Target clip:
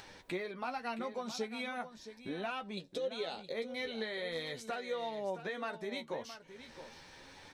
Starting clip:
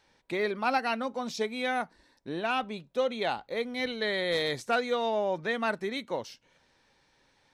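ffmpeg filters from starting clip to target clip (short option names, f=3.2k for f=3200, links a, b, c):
-filter_complex "[0:a]asettb=1/sr,asplit=3[a][b][c];[a]atrim=end=2.774[d];[b]atrim=start=2.77:end=3.52,asetpts=PTS-STARTPTS,afade=t=in:d=0.004:c=qsin,afade=t=out:st=0.746:d=0.004:c=qsin,equalizer=f=500:t=o:w=1:g=11,equalizer=f=1k:t=o:w=1:g=-5,equalizer=f=4k:t=o:w=1:g=10,equalizer=f=8k:t=o:w=1:g=9[e];[c]atrim=start=3.516[f];[d][e]acrossfade=d=0.004:c1=hsin:c2=qsin[g];[g][f]acrossfade=d=0.004:c1=qsin:c2=hsin,acompressor=mode=upward:threshold=-38dB:ratio=2.5,alimiter=limit=-20.5dB:level=0:latency=1:release=225,acompressor=threshold=-33dB:ratio=6,flanger=delay=9.8:depth=4.2:regen=29:speed=0.39:shape=triangular,aecho=1:1:669:0.251,volume=1dB"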